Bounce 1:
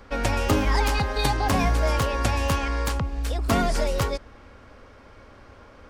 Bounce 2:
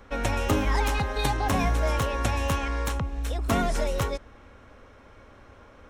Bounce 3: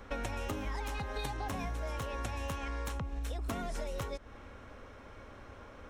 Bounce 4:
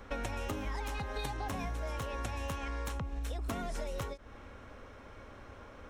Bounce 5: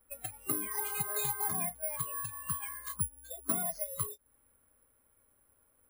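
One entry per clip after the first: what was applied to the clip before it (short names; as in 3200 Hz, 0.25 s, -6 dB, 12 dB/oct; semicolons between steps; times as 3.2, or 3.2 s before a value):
notch 4700 Hz, Q 6.1; gain -2.5 dB
compressor 10:1, threshold -34 dBFS, peak gain reduction 15.5 dB
ending taper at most 310 dB/s
careless resampling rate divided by 4×, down filtered, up zero stuff; spectral noise reduction 27 dB; gain +2 dB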